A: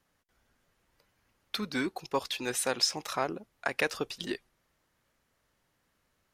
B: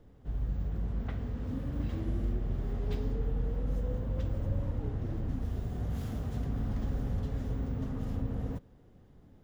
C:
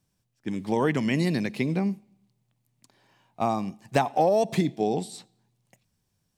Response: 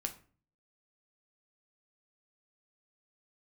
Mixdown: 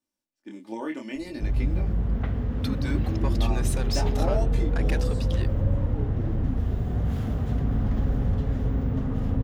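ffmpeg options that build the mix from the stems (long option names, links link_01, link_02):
-filter_complex "[0:a]asoftclip=type=tanh:threshold=-23.5dB,adelay=1100,volume=-2.5dB[link_01];[1:a]bass=frequency=250:gain=1,treble=frequency=4000:gain=-8,acontrast=86,adelay=1150,volume=0.5dB[link_02];[2:a]lowshelf=frequency=200:width_type=q:width=1.5:gain=-11,aecho=1:1:3.4:0.58,flanger=delay=19.5:depth=7.4:speed=0.67,volume=-8dB[link_03];[link_01][link_02][link_03]amix=inputs=3:normalize=0"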